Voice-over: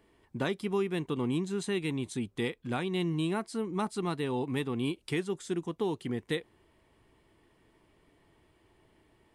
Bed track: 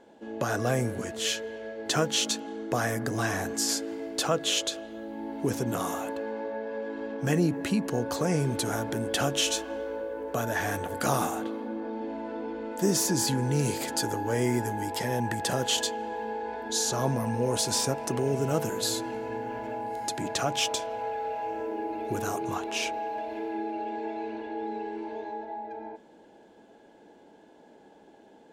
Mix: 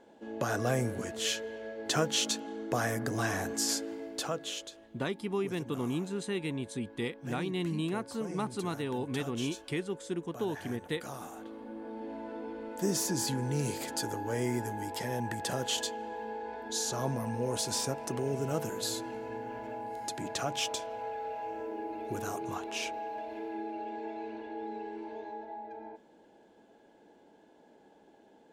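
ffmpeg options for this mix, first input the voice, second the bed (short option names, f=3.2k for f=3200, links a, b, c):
-filter_complex "[0:a]adelay=4600,volume=-2.5dB[a];[1:a]volume=8dB,afade=t=out:st=3.74:d=0.98:silence=0.211349,afade=t=in:st=11.2:d=0.95:silence=0.281838[b];[a][b]amix=inputs=2:normalize=0"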